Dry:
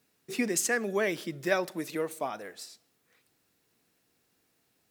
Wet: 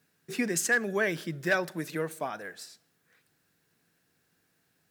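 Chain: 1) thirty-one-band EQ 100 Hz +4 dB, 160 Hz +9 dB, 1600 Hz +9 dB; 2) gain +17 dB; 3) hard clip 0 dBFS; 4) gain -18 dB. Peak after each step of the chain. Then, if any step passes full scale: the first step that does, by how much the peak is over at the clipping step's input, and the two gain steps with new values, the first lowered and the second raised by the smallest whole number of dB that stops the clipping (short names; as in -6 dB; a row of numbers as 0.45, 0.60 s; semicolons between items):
-11.5, +5.5, 0.0, -18.0 dBFS; step 2, 5.5 dB; step 2 +11 dB, step 4 -12 dB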